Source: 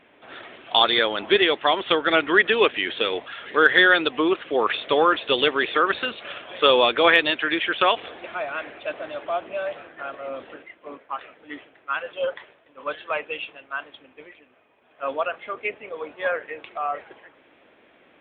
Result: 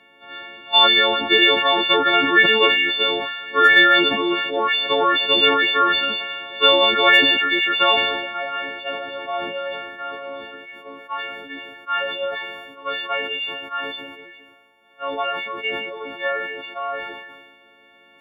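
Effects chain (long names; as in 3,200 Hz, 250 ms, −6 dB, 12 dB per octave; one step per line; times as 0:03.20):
every partial snapped to a pitch grid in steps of 4 semitones
level that may fall only so fast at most 40 dB per second
level −1.5 dB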